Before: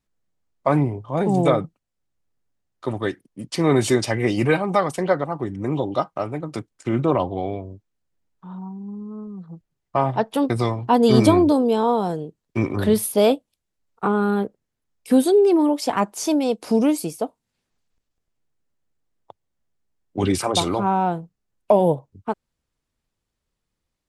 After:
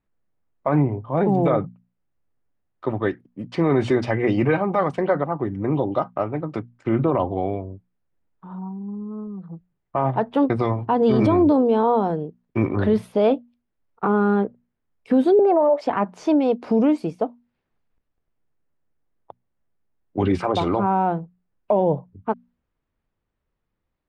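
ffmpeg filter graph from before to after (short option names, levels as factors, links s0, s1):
-filter_complex "[0:a]asettb=1/sr,asplit=3[s0][s1][s2];[s0]atrim=end=15.394[s3];[s1]atrim=start=15.39:end=15.81,asetpts=PTS-STARTPTS,afade=t=in:d=0.004:c=qsin,afade=t=out:st=0.416:d=0.004:c=qsin,highpass=f=620:t=q:w=5.5,highshelf=f=2400:t=q:w=1.5:g=-6.5[s4];[s2]atrim=start=15.806[s5];[s3][s4]acrossfade=d=0.004:c1=hsin:c2=qsin[s6];[s6][s5]acrossfade=d=0.004:c1=qsin:c2=hsin,lowpass=2100,bandreject=f=60:t=h:w=6,bandreject=f=120:t=h:w=6,bandreject=f=180:t=h:w=6,bandreject=f=240:t=h:w=6,alimiter=limit=0.251:level=0:latency=1:release=30,volume=1.26"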